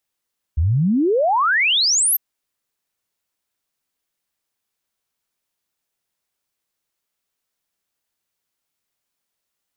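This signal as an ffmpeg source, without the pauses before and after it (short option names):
-f lavfi -i "aevalsrc='0.2*clip(min(t,1.6-t)/0.01,0,1)*sin(2*PI*71*1.6/log(13000/71)*(exp(log(13000/71)*t/1.6)-1))':d=1.6:s=44100"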